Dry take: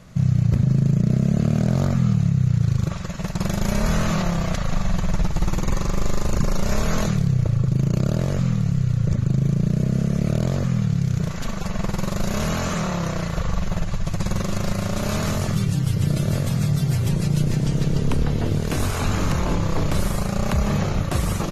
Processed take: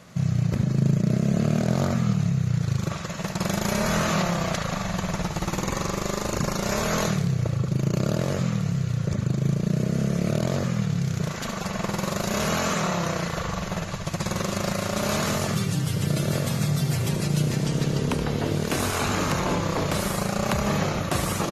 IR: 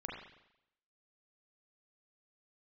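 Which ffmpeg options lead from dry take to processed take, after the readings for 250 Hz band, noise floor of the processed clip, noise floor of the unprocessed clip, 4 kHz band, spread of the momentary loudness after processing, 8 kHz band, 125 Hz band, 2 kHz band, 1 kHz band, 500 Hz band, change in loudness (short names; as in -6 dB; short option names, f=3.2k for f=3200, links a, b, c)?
-2.5 dB, -32 dBFS, -27 dBFS, +2.5 dB, 5 LU, +2.5 dB, -4.5 dB, +2.5 dB, +2.0 dB, +1.5 dB, -3.0 dB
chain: -af "highpass=f=270:p=1,aecho=1:1:74:0.299,volume=2dB"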